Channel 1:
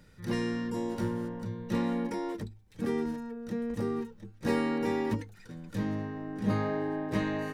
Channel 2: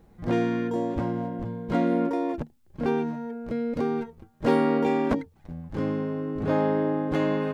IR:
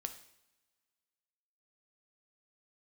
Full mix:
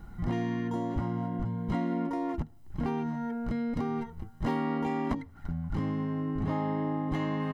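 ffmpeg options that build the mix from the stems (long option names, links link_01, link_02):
-filter_complex "[0:a]acompressor=threshold=-32dB:ratio=6,lowpass=frequency=1400:width_type=q:width=13,volume=-10.5dB[link_01];[1:a]aecho=1:1:1:0.65,volume=2dB,asplit=2[link_02][link_03];[link_03]volume=-15dB[link_04];[2:a]atrim=start_sample=2205[link_05];[link_04][link_05]afir=irnorm=-1:irlink=0[link_06];[link_01][link_02][link_06]amix=inputs=3:normalize=0,lowshelf=frequency=85:gain=6.5,acompressor=threshold=-31dB:ratio=3"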